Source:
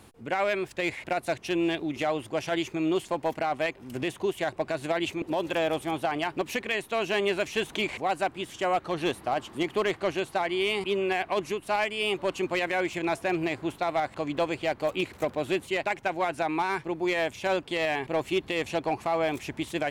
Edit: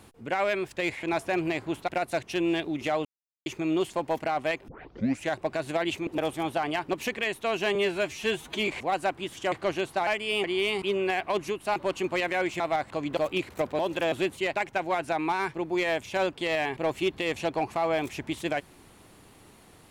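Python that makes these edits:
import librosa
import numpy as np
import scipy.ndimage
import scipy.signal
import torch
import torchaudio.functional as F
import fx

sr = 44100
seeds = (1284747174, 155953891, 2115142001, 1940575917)

y = fx.edit(x, sr, fx.silence(start_s=2.2, length_s=0.41),
    fx.tape_start(start_s=3.83, length_s=0.62),
    fx.move(start_s=5.33, length_s=0.33, to_s=15.42),
    fx.stretch_span(start_s=7.23, length_s=0.62, factor=1.5),
    fx.cut(start_s=8.69, length_s=1.22),
    fx.move(start_s=11.78, length_s=0.37, to_s=10.46),
    fx.move(start_s=12.99, length_s=0.85, to_s=1.03),
    fx.cut(start_s=14.41, length_s=0.39), tone=tone)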